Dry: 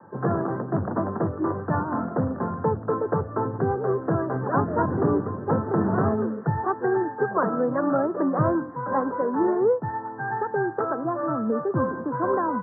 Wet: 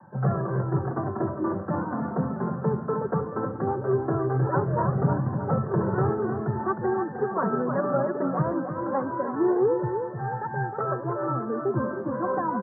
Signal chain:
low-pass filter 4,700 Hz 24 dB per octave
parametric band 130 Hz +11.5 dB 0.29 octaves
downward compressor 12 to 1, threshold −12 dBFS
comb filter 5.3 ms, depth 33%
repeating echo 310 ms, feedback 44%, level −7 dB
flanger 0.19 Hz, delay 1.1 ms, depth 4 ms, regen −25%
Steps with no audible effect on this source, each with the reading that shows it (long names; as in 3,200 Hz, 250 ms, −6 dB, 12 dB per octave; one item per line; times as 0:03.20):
low-pass filter 4,700 Hz: nothing at its input above 1,800 Hz